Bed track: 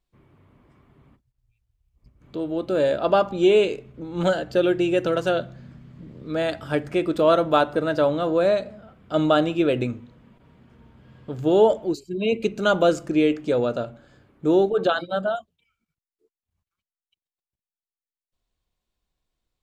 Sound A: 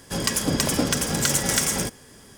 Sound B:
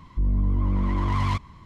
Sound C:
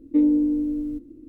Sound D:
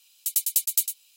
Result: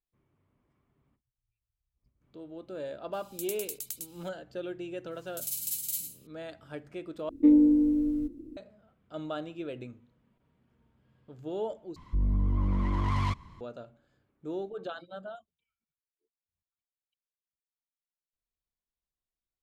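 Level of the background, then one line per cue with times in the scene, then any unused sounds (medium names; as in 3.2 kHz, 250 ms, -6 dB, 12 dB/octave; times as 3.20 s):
bed track -17.5 dB
3.13 s: add D -2.5 dB + compression 5:1, threshold -33 dBFS
5.11 s: add D -14 dB + Schroeder reverb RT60 0.35 s, DRR -3.5 dB
7.29 s: replace with C -1 dB
11.96 s: replace with B -4.5 dB
not used: A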